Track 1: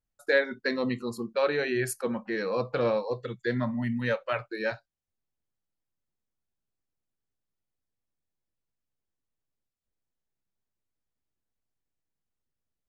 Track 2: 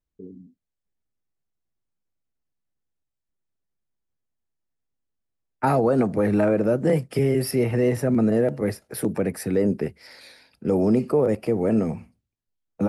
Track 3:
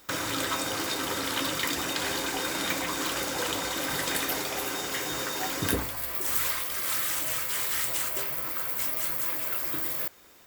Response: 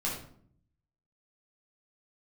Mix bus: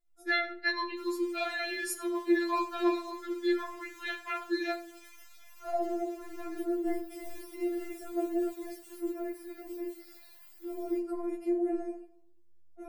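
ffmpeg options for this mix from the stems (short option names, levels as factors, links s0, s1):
-filter_complex "[0:a]volume=0.944,asplit=3[s0][s1][s2];[s1]volume=0.335[s3];[1:a]acontrast=84,equalizer=f=2700:w=0.58:g=-6.5,deesser=0.6,volume=0.141,asplit=2[s4][s5];[s5]volume=0.422[s6];[2:a]highpass=840,flanger=delay=8.3:depth=6.6:regen=75:speed=0.57:shape=sinusoidal,adelay=900,volume=0.112[s7];[s2]apad=whole_len=568199[s8];[s4][s8]sidechaincompress=threshold=0.00282:ratio=8:attack=16:release=954[s9];[3:a]atrim=start_sample=2205[s10];[s3][s6]amix=inputs=2:normalize=0[s11];[s11][s10]afir=irnorm=-1:irlink=0[s12];[s0][s9][s7][s12]amix=inputs=4:normalize=0,afftfilt=real='re*4*eq(mod(b,16),0)':imag='im*4*eq(mod(b,16),0)':win_size=2048:overlap=0.75"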